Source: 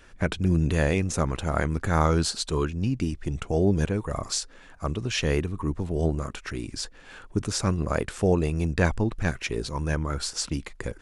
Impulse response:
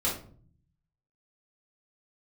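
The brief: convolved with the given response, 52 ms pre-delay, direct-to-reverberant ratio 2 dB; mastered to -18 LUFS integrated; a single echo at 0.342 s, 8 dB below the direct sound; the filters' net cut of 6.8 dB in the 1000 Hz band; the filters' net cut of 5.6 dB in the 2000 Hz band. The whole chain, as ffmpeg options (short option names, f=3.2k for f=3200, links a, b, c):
-filter_complex "[0:a]equalizer=f=1k:t=o:g=-8,equalizer=f=2k:t=o:g=-4.5,aecho=1:1:342:0.398,asplit=2[a][b];[1:a]atrim=start_sample=2205,adelay=52[c];[b][c]afir=irnorm=-1:irlink=0,volume=-10dB[d];[a][d]amix=inputs=2:normalize=0,volume=5dB"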